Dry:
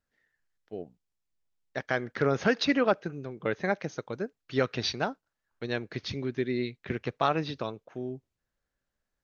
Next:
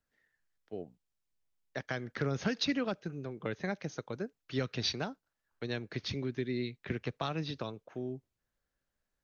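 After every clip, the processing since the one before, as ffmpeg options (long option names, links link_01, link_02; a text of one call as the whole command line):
ffmpeg -i in.wav -filter_complex "[0:a]acrossover=split=240|3000[link_01][link_02][link_03];[link_02]acompressor=threshold=-36dB:ratio=3[link_04];[link_01][link_04][link_03]amix=inputs=3:normalize=0,volume=-1.5dB" out.wav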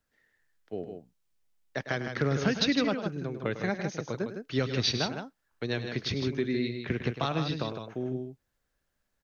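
ffmpeg -i in.wav -af "aecho=1:1:102|157.4:0.251|0.447,volume=5dB" out.wav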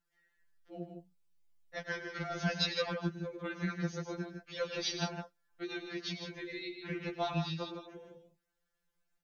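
ffmpeg -i in.wav -af "afftfilt=real='re*2.83*eq(mod(b,8),0)':imag='im*2.83*eq(mod(b,8),0)':win_size=2048:overlap=0.75,volume=-3dB" out.wav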